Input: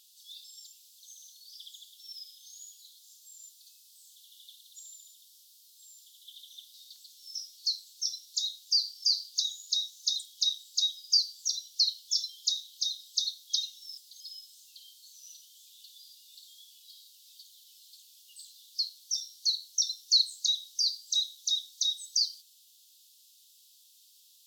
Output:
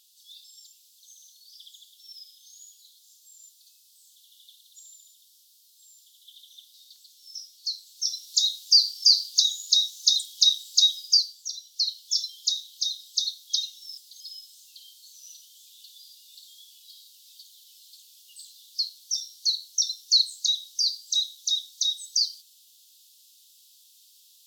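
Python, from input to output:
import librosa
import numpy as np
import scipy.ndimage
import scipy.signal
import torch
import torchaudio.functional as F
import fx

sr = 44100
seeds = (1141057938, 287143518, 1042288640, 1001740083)

y = fx.gain(x, sr, db=fx.line((7.71, -0.5), (8.36, 9.0), (10.98, 9.0), (11.49, -3.5), (12.14, 3.5)))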